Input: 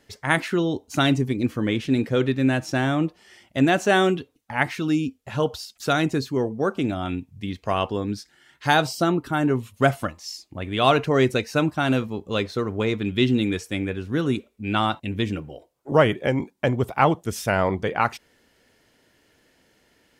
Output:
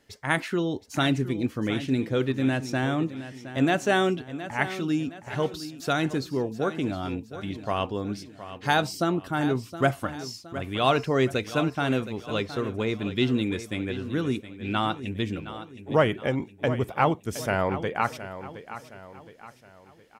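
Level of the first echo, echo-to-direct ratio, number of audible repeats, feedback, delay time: −13.0 dB, −12.0 dB, 4, 43%, 717 ms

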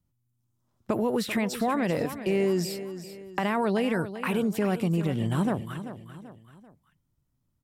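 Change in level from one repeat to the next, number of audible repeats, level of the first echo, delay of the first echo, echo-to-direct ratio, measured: −7.5 dB, 3, −12.0 dB, 388 ms, −11.0 dB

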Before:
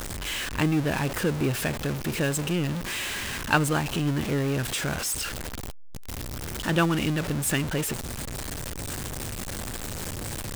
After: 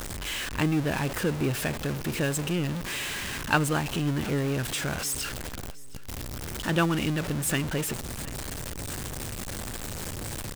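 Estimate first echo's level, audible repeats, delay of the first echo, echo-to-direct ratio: −21.0 dB, 2, 717 ms, −20.5 dB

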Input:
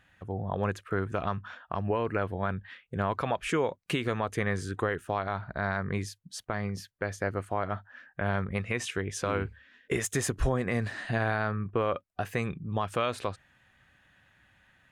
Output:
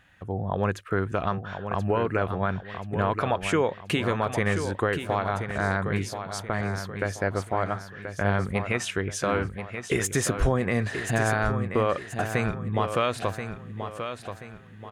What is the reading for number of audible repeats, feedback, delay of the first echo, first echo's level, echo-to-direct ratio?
4, 38%, 1,031 ms, −8.5 dB, −8.0 dB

